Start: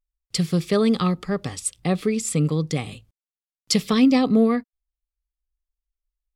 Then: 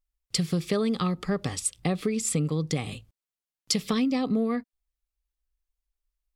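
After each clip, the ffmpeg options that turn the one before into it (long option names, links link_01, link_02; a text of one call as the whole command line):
ffmpeg -i in.wav -af "acompressor=threshold=-24dB:ratio=6,volume=1dB" out.wav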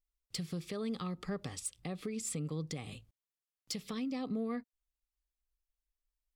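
ffmpeg -i in.wav -filter_complex "[0:a]acrossover=split=1700[link_01][link_02];[link_02]asoftclip=type=tanh:threshold=-19dB[link_03];[link_01][link_03]amix=inputs=2:normalize=0,alimiter=limit=-23dB:level=0:latency=1:release=364,volume=-6.5dB" out.wav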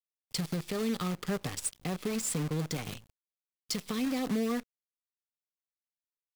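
ffmpeg -i in.wav -af "acrusher=bits=8:dc=4:mix=0:aa=0.000001,volume=5.5dB" out.wav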